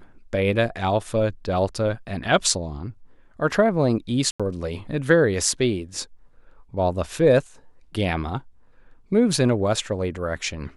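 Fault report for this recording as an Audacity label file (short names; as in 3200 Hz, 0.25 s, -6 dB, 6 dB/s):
4.310000	4.400000	gap 86 ms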